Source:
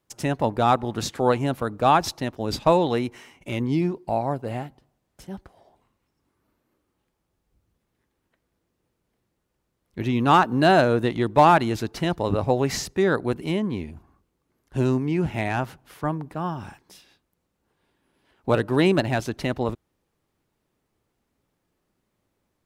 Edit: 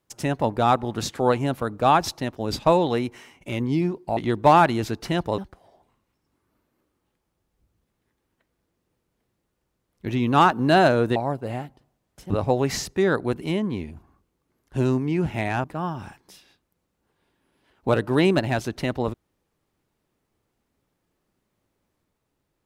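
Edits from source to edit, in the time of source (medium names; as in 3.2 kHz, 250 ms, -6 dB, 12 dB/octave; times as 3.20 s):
4.17–5.31 s: swap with 11.09–12.30 s
15.64–16.25 s: delete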